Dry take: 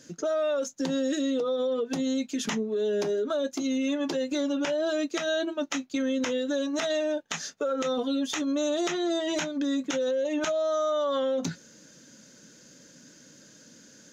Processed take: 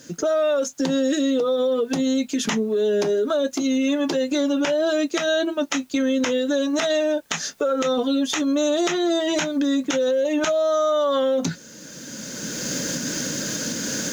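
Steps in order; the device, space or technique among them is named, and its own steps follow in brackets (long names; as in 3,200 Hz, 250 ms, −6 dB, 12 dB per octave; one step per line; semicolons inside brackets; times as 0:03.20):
cheap recorder with automatic gain (white noise bed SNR 40 dB; camcorder AGC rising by 16 dB per second)
level +6.5 dB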